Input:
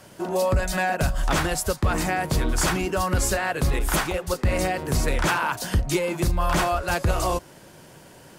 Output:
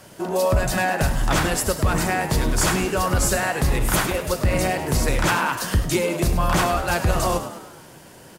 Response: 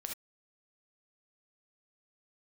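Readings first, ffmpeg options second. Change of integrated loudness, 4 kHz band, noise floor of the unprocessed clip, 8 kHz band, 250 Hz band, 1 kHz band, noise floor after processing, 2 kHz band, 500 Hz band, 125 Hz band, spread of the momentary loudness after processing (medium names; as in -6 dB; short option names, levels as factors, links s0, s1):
+2.5 dB, +3.0 dB, -48 dBFS, +3.5 dB, +3.0 dB, +2.5 dB, -45 dBFS, +2.5 dB, +2.5 dB, +2.5 dB, 3 LU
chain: -filter_complex "[0:a]asplit=7[s0][s1][s2][s3][s4][s5][s6];[s1]adelay=102,afreqshift=77,volume=0.282[s7];[s2]adelay=204,afreqshift=154,volume=0.15[s8];[s3]adelay=306,afreqshift=231,volume=0.0794[s9];[s4]adelay=408,afreqshift=308,volume=0.0422[s10];[s5]adelay=510,afreqshift=385,volume=0.0221[s11];[s6]adelay=612,afreqshift=462,volume=0.0117[s12];[s0][s7][s8][s9][s10][s11][s12]amix=inputs=7:normalize=0,asplit=2[s13][s14];[1:a]atrim=start_sample=2205,highshelf=f=6000:g=8.5[s15];[s14][s15]afir=irnorm=-1:irlink=0,volume=0.355[s16];[s13][s16]amix=inputs=2:normalize=0"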